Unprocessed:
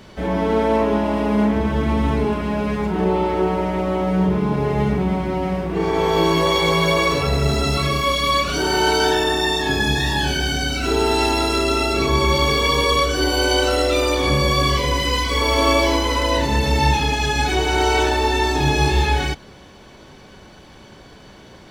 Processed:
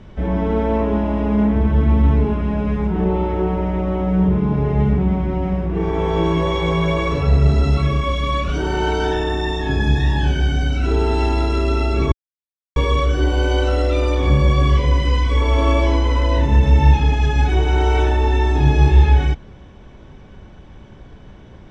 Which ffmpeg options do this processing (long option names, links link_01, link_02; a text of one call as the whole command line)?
ffmpeg -i in.wav -filter_complex "[0:a]asplit=3[link_01][link_02][link_03];[link_01]atrim=end=12.12,asetpts=PTS-STARTPTS,afade=type=out:start_time=12.116:duration=0.004:curve=hsin[link_04];[link_02]atrim=start=12.12:end=12.76,asetpts=PTS-STARTPTS,volume=0[link_05];[link_03]atrim=start=12.76,asetpts=PTS-STARTPTS,afade=type=in:duration=0.004:curve=hsin[link_06];[link_04][link_05][link_06]concat=n=3:v=0:a=1,lowpass=8800,aemphasis=mode=reproduction:type=bsi,bandreject=frequency=4400:width=5.7,volume=-4dB" out.wav